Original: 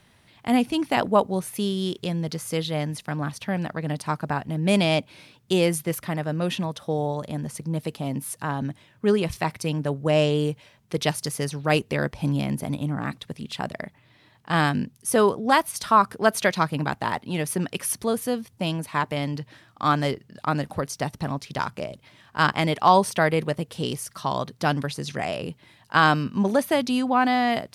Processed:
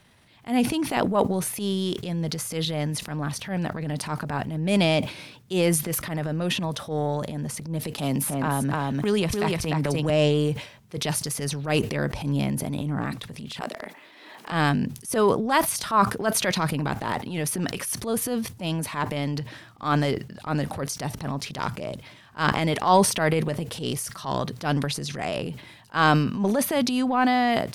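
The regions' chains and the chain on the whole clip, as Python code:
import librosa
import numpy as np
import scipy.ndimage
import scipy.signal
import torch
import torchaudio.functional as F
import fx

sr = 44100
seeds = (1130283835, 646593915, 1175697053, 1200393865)

y = fx.chain(x, sr, fx.echo_single(ms=297, db=-5.0),
    fx.band_squash(depth_pct=100), at=(7.98, 10.1))
y = fx.chain(y, sr, fx.highpass(hz=280.0, slope=24),
    fx.band_squash(depth_pct=100), at=(13.61, 14.52))
y = fx.transient(y, sr, attack_db=-9, sustain_db=7)
y = fx.sustainer(y, sr, db_per_s=130.0)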